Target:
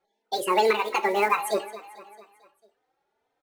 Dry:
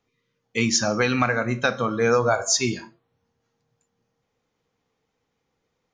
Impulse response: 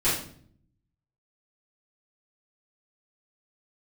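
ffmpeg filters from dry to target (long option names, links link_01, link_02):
-filter_complex "[0:a]lowpass=frequency=1000:poles=1,lowshelf=frequency=180:width_type=q:width=1.5:gain=-9.5,acrusher=bits=6:mode=log:mix=0:aa=0.000001,aecho=1:1:387|774|1161|1548|1935:0.141|0.0777|0.0427|0.0235|0.0129,asetrate=76440,aresample=44100,asplit=2[link_01][link_02];[link_02]adelay=3.2,afreqshift=2[link_03];[link_01][link_03]amix=inputs=2:normalize=1,volume=3.5dB"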